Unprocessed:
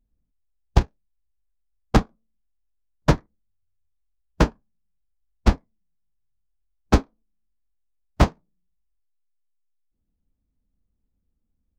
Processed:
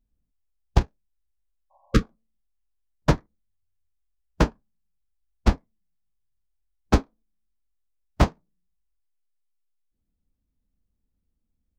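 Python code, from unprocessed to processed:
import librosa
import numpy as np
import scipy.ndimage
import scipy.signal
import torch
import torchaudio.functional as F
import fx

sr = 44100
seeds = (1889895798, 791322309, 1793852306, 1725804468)

y = fx.spec_repair(x, sr, seeds[0], start_s=1.74, length_s=0.28, low_hz=550.0, high_hz=1100.0, source='after')
y = y * 10.0 ** (-2.0 / 20.0)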